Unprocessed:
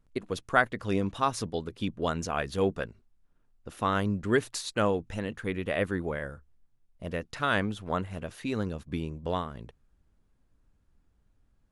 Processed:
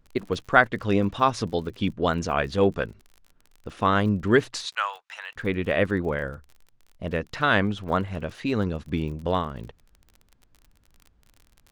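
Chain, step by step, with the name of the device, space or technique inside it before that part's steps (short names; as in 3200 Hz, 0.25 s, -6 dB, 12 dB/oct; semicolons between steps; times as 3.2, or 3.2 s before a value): 4.66–5.36 inverse Chebyshev high-pass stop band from 290 Hz, stop band 60 dB; lo-fi chain (LPF 5300 Hz 12 dB/oct; wow and flutter; crackle 38/s -44 dBFS); gain +6 dB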